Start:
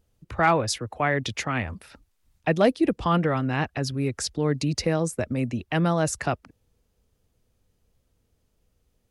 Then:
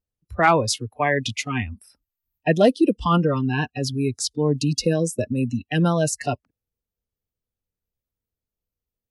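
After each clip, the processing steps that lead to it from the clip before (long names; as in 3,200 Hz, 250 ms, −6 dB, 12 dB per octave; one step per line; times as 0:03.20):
noise reduction from a noise print of the clip's start 24 dB
level +4 dB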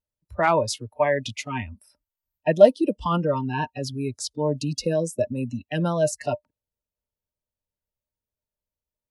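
hollow resonant body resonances 600/920 Hz, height 15 dB, ringing for 80 ms
level −5.5 dB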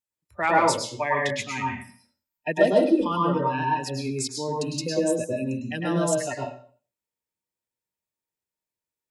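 convolution reverb RT60 0.50 s, pre-delay 101 ms, DRR −1 dB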